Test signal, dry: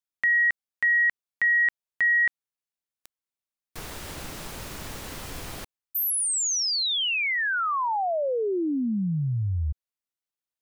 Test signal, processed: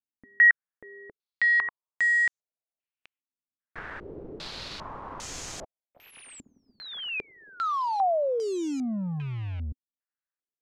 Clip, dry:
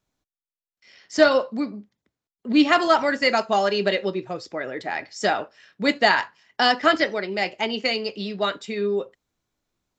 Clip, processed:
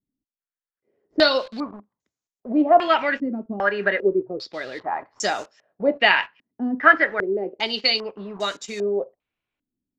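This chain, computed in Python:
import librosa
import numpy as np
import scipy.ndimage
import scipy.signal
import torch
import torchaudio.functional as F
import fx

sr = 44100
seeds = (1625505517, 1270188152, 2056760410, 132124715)

p1 = fx.low_shelf(x, sr, hz=260.0, db=-5.0)
p2 = fx.quant_dither(p1, sr, seeds[0], bits=6, dither='none')
p3 = p1 + (p2 * librosa.db_to_amplitude(-4.5))
p4 = fx.filter_held_lowpass(p3, sr, hz=2.5, low_hz=260.0, high_hz=6700.0)
y = p4 * librosa.db_to_amplitude(-6.0)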